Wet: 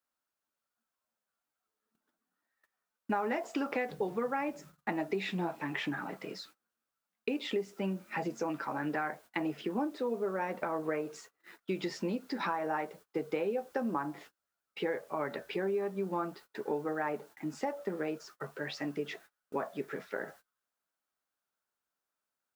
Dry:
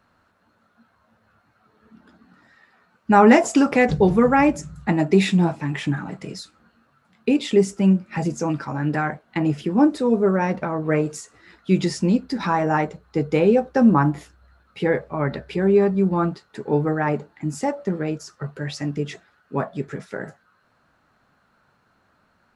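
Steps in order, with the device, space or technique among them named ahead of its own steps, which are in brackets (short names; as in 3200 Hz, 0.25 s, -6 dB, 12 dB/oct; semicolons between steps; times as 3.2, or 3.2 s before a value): baby monitor (BPF 350–3800 Hz; compressor 6:1, threshold -27 dBFS, peak gain reduction 17 dB; white noise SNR 29 dB; gate -50 dBFS, range -26 dB); gain -3.5 dB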